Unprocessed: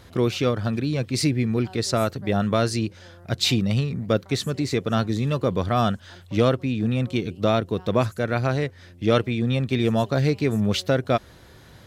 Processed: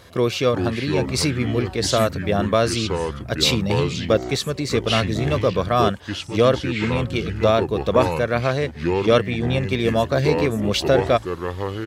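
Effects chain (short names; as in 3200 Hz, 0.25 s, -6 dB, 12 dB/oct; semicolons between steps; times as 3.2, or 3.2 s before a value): low shelf 120 Hz -10.5 dB; comb 1.8 ms, depth 31%; echoes that change speed 0.325 s, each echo -5 st, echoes 2, each echo -6 dB; gain +3.5 dB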